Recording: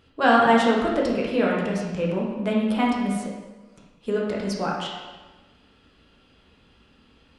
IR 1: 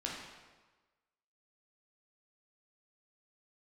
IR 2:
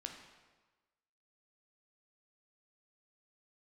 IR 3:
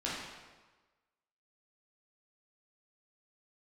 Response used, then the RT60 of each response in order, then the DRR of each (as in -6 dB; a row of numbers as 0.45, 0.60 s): 1; 1.3, 1.3, 1.3 s; -3.5, 2.5, -7.5 dB